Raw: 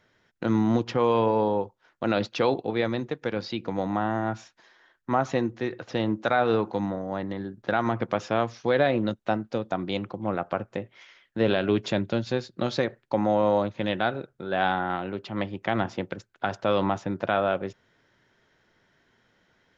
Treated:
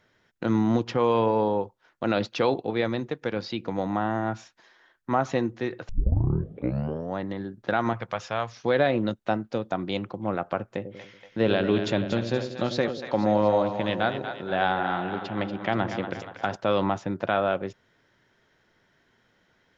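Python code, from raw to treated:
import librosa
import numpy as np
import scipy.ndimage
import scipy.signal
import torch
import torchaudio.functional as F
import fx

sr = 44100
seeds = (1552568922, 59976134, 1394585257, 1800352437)

y = fx.peak_eq(x, sr, hz=290.0, db=-14.0, octaves=1.4, at=(7.93, 8.57))
y = fx.echo_split(y, sr, split_hz=600.0, low_ms=94, high_ms=237, feedback_pct=52, wet_db=-8.0, at=(10.67, 16.56))
y = fx.edit(y, sr, fx.tape_start(start_s=5.89, length_s=1.27), tone=tone)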